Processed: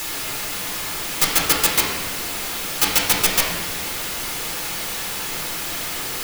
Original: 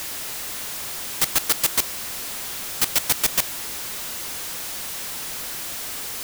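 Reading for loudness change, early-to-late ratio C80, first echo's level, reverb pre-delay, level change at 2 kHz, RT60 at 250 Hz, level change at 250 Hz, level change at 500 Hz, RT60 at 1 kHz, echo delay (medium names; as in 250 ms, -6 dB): +3.5 dB, 5.0 dB, no echo, 6 ms, +7.0 dB, 1.9 s, +8.5 dB, +7.5 dB, 1.2 s, no echo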